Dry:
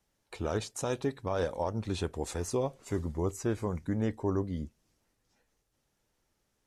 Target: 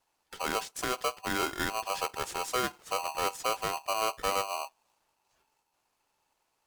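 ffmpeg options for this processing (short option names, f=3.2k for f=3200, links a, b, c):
-af "aeval=exprs='val(0)*sgn(sin(2*PI*880*n/s))':c=same"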